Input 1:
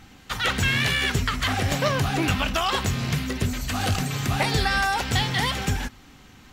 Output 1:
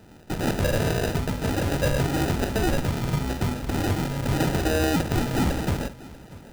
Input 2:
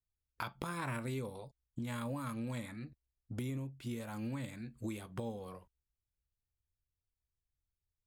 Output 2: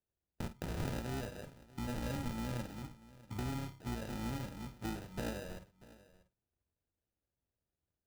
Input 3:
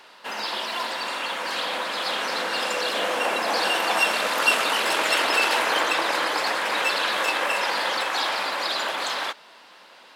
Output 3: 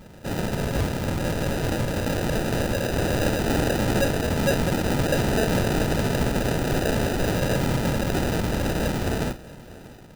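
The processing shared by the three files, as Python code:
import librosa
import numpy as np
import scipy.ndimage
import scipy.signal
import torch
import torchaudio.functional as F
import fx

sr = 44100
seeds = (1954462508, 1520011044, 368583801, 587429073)

p1 = fx.octave_divider(x, sr, octaves=2, level_db=-1.0)
p2 = scipy.signal.sosfilt(scipy.signal.butter(2, 62.0, 'highpass', fs=sr, output='sos'), p1)
p3 = fx.peak_eq(p2, sr, hz=970.0, db=7.5, octaves=0.59)
p4 = fx.rider(p3, sr, range_db=4, speed_s=2.0)
p5 = p3 + F.gain(torch.from_numpy(p4), -1.5).numpy()
p6 = fx.sample_hold(p5, sr, seeds[0], rate_hz=1100.0, jitter_pct=0)
p7 = np.clip(10.0 ** (10.0 / 20.0) * p6, -1.0, 1.0) / 10.0 ** (10.0 / 20.0)
p8 = fx.doubler(p7, sr, ms=49.0, db=-13.5)
p9 = p8 + fx.echo_single(p8, sr, ms=639, db=-19.5, dry=0)
y = F.gain(torch.from_numpy(p9), -6.5).numpy()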